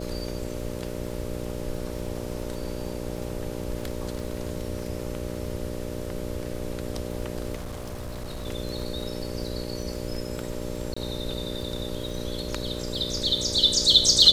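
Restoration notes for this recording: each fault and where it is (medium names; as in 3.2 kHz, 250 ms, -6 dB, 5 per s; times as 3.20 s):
buzz 60 Hz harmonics 10 -34 dBFS
crackle 35 per s -35 dBFS
7.55–8.47 s: clipped -30.5 dBFS
10.94–10.96 s: dropout 25 ms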